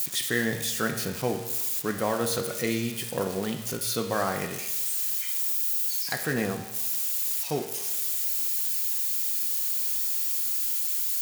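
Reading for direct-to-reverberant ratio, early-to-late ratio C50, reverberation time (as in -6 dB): 4.0 dB, 7.5 dB, 1.0 s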